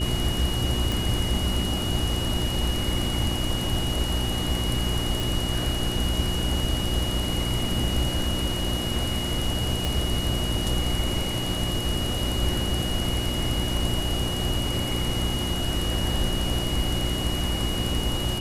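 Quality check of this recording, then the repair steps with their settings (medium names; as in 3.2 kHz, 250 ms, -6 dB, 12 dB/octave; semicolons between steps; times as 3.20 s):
hum 60 Hz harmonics 6 -30 dBFS
whine 2.9 kHz -31 dBFS
0.92 s: pop
5.20 s: pop
9.85 s: pop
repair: de-click; band-stop 2.9 kHz, Q 30; de-hum 60 Hz, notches 6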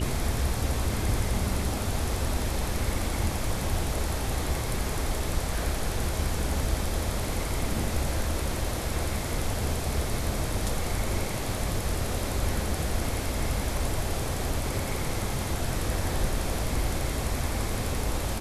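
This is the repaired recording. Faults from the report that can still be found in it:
9.85 s: pop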